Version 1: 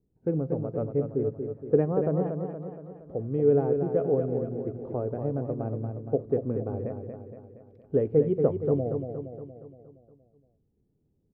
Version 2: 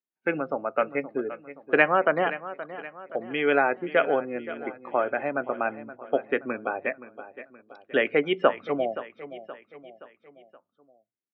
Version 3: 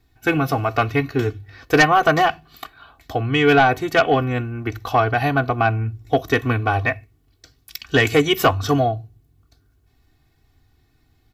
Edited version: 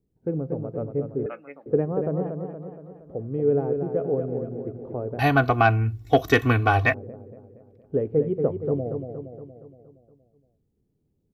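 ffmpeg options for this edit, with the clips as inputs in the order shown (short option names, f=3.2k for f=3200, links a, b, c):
-filter_complex "[0:a]asplit=3[a][b][c];[a]atrim=end=1.262[d];[1:a]atrim=start=1.258:end=1.662[e];[b]atrim=start=1.658:end=5.192[f];[2:a]atrim=start=5.188:end=6.942[g];[c]atrim=start=6.938[h];[d][e]acrossfade=d=0.004:c1=hsin:c2=hsin[i];[i][f]acrossfade=d=0.004:c1=hsin:c2=hsin[j];[j][g]acrossfade=d=0.004:c1=hsin:c2=hsin[k];[k][h]acrossfade=d=0.004:c1=hsin:c2=hsin"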